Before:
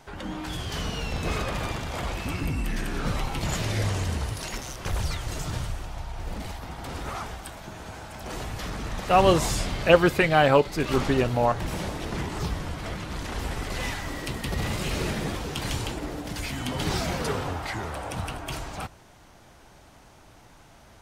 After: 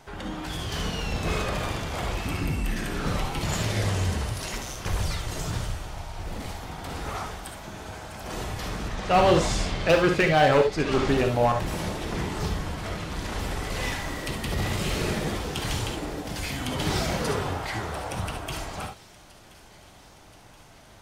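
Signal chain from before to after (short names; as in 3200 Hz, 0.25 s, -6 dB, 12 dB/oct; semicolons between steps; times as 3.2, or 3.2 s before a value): 8.88–11.08 LPF 6900 Hz 12 dB/oct; hard clip -15 dBFS, distortion -14 dB; thin delay 1.026 s, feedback 64%, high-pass 2600 Hz, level -19 dB; non-linear reverb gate 90 ms rising, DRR 5 dB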